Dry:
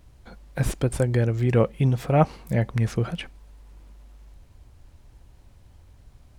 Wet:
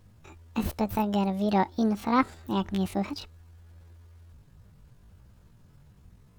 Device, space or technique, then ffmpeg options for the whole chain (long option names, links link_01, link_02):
chipmunk voice: -filter_complex "[0:a]asettb=1/sr,asplit=3[link_01][link_02][link_03];[link_01]atrim=end=2.294[link_04];[link_02]atrim=start=2.29:end=2.88,asetpts=PTS-STARTPTS,afade=type=in:duration=0.004:curve=qsin,afade=type=out:start_time=0.586:duration=0.004:curve=qsin,asubboost=boost=10.5:cutoff=73[link_05];[link_03]atrim=start=2.876[link_06];[link_04][link_05]acrossfade=duration=0.004:curve1=hsin:curve2=qsin[link_07];[link_07][link_06]acrossfade=duration=0.004:curve1=qsin:curve2=hsin,asetrate=74167,aresample=44100,atempo=0.594604,volume=-4.5dB"